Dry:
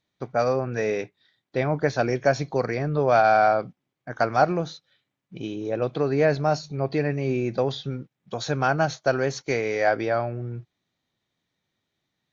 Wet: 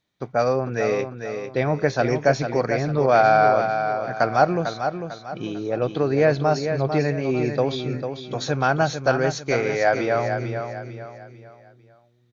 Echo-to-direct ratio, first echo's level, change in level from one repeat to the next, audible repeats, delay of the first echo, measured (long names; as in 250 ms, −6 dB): −7.0 dB, −7.5 dB, −8.5 dB, 4, 448 ms